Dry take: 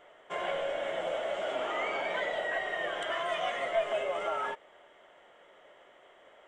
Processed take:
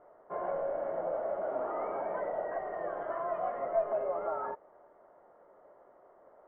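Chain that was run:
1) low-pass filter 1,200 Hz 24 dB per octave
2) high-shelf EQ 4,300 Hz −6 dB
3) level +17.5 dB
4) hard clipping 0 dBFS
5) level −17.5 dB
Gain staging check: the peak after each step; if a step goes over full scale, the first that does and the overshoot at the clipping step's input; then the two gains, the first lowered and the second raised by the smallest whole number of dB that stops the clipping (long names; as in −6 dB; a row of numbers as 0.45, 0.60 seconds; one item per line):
−19.0, −19.0, −1.5, −1.5, −19.0 dBFS
no step passes full scale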